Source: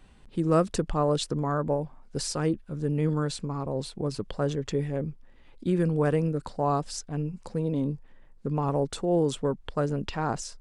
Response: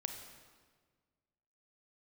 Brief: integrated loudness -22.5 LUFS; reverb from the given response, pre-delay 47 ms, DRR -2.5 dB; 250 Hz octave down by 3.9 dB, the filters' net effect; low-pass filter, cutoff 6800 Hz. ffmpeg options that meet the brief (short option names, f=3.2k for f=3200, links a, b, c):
-filter_complex "[0:a]lowpass=6.8k,equalizer=f=250:t=o:g=-6.5,asplit=2[a][b];[1:a]atrim=start_sample=2205,adelay=47[c];[b][c]afir=irnorm=-1:irlink=0,volume=3dB[d];[a][d]amix=inputs=2:normalize=0,volume=4dB"